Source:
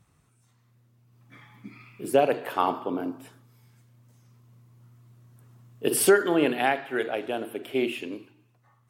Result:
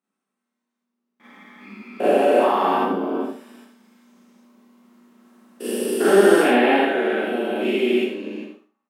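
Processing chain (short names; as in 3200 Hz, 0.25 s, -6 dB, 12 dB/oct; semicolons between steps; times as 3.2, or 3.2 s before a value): stepped spectrum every 0.4 s; gate with hold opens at -53 dBFS; elliptic high-pass 190 Hz, stop band 40 dB; high shelf 5500 Hz -8 dB; on a send: echo 80 ms -7 dB; on the sum: Schroeder reverb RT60 0.35 s, combs from 29 ms, DRR -6.5 dB; gain +4.5 dB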